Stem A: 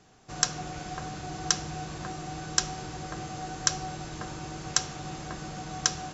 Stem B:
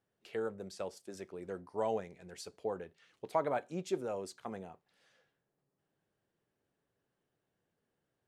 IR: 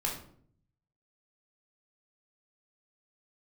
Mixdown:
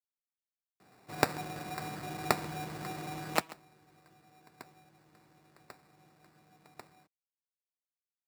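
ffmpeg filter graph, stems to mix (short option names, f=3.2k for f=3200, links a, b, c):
-filter_complex "[0:a]acrusher=samples=14:mix=1:aa=0.000001,adelay=800,volume=-2.5dB,asplit=2[a][b];[b]volume=-22.5dB[c];[1:a]lowshelf=f=400:g=-9,acrusher=bits=3:mix=0:aa=0.000001,volume=-4dB,asplit=4[d][e][f][g];[e]volume=-17dB[h];[f]volume=-17dB[i];[g]apad=whole_len=305944[j];[a][j]sidechaingate=range=-36dB:threshold=-37dB:ratio=16:detection=peak[k];[2:a]atrim=start_sample=2205[l];[h][l]afir=irnorm=-1:irlink=0[m];[c][i]amix=inputs=2:normalize=0,aecho=0:1:137:1[n];[k][d][m][n]amix=inputs=4:normalize=0,highpass=130"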